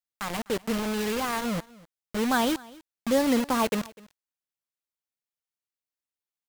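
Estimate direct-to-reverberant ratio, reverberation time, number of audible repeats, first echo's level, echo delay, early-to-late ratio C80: none, none, 1, -22.5 dB, 0.25 s, none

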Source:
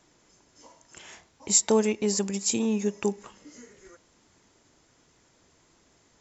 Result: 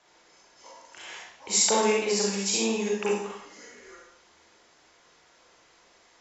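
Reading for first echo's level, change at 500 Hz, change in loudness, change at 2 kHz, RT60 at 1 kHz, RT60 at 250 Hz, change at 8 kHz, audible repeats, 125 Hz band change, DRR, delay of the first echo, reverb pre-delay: none, +1.0 dB, 0.0 dB, +7.5 dB, 0.65 s, 0.80 s, n/a, none, n/a, -4.5 dB, none, 35 ms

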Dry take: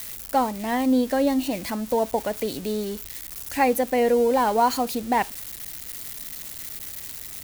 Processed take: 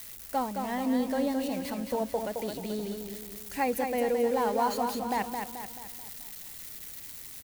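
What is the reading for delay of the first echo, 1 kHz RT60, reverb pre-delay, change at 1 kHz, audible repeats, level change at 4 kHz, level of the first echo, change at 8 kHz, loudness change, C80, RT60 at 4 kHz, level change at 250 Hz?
0.217 s, none, none, -7.0 dB, 5, -7.0 dB, -5.5 dB, -7.0 dB, -7.0 dB, none, none, -6.5 dB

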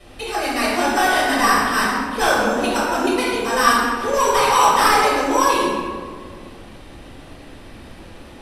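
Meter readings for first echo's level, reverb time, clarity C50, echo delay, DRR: none, 1.9 s, -1.5 dB, none, -8.0 dB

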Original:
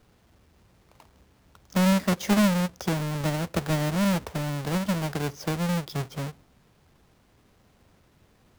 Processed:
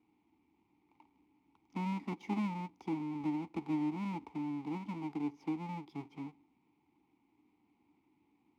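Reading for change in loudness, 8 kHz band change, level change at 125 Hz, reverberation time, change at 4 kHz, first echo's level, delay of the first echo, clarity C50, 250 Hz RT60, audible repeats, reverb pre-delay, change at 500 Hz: -12.5 dB, under -30 dB, -17.0 dB, none, -23.0 dB, none, none, none, none, none, none, -18.5 dB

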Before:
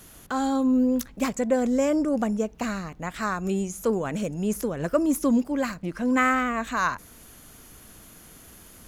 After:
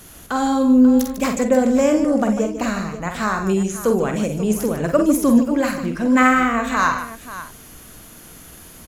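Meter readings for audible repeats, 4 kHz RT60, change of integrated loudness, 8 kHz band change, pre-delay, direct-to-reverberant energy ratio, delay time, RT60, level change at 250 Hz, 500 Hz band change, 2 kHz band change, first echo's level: 4, none, +7.5 dB, +7.0 dB, none, none, 47 ms, none, +7.5 dB, +7.0 dB, +7.0 dB, -6.5 dB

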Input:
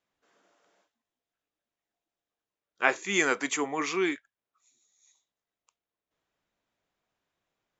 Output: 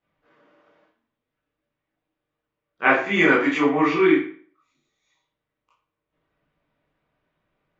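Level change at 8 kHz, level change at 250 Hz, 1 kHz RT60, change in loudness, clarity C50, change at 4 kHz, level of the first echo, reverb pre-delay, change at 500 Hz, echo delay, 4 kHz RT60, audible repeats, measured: n/a, +13.0 dB, 0.45 s, +9.0 dB, 5.0 dB, +3.0 dB, none, 17 ms, +10.5 dB, none, 0.40 s, none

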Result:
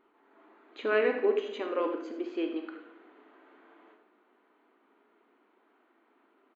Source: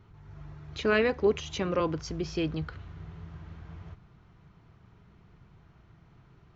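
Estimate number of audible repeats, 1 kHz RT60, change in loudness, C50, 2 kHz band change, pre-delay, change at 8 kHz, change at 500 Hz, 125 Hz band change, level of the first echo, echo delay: 1, 0.75 s, -1.5 dB, 6.5 dB, -2.5 dB, 27 ms, n/a, -0.5 dB, under -25 dB, -12.5 dB, 80 ms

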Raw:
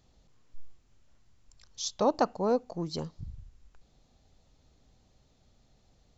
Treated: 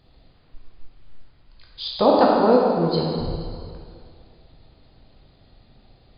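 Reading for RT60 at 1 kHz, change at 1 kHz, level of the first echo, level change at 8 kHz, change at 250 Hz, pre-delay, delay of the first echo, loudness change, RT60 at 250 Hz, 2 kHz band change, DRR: 2.2 s, +12.0 dB, none, n/a, +12.5 dB, 6 ms, none, +11.0 dB, 2.2 s, +12.0 dB, -3.0 dB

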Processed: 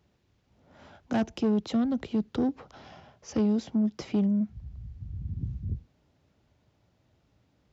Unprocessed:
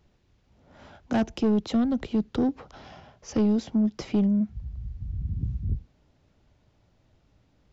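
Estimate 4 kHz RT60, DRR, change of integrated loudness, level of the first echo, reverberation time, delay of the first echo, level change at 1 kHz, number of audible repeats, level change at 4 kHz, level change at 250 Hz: none, none, -2.5 dB, none, none, none, -2.5 dB, none, -2.5 dB, -2.5 dB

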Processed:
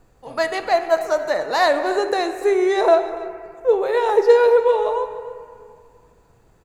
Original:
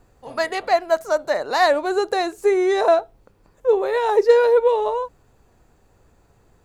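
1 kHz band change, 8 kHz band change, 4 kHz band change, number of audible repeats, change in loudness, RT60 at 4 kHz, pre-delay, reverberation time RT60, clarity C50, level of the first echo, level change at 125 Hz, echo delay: +0.5 dB, n/a, +0.5 dB, 1, +1.0 dB, 1.3 s, 6 ms, 2.2 s, 8.5 dB, -17.0 dB, n/a, 0.287 s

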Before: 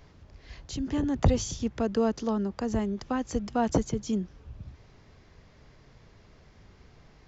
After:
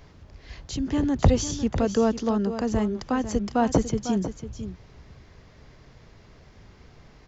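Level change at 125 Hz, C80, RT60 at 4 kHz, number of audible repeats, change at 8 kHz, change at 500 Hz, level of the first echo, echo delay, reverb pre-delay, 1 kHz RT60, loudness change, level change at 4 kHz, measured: +4.5 dB, none, none, 1, n/a, +4.5 dB, -11.0 dB, 0.499 s, none, none, +4.0 dB, +4.5 dB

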